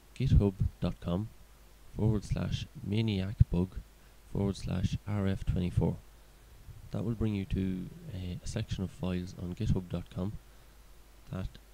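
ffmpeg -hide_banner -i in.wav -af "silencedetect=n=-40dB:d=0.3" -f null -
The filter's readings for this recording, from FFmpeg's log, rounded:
silence_start: 1.27
silence_end: 1.94 | silence_duration: 0.67
silence_start: 3.81
silence_end: 4.32 | silence_duration: 0.52
silence_start: 5.99
silence_end: 6.69 | silence_duration: 0.70
silence_start: 10.37
silence_end: 11.30 | silence_duration: 0.93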